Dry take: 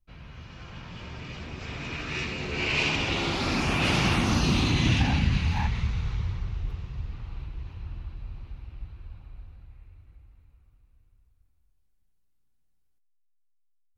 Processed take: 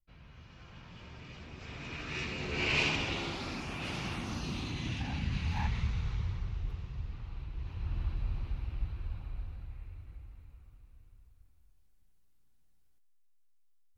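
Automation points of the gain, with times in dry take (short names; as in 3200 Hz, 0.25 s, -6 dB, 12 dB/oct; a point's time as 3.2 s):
1.49 s -9.5 dB
2.76 s -3 dB
3.65 s -14 dB
4.98 s -14 dB
5.7 s -5 dB
7.44 s -5 dB
8.05 s +4 dB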